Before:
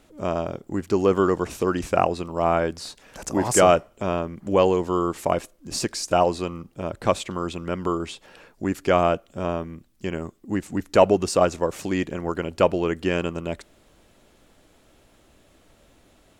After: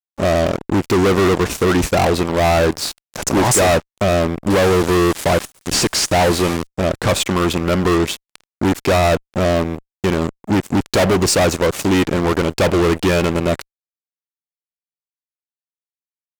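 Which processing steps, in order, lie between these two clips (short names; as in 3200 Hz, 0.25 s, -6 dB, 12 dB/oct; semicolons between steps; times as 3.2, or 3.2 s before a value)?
4.5–6.67 delta modulation 64 kbps, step -34 dBFS; fuzz box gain 30 dB, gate -39 dBFS; vibrato 1.8 Hz 11 cents; gain +1.5 dB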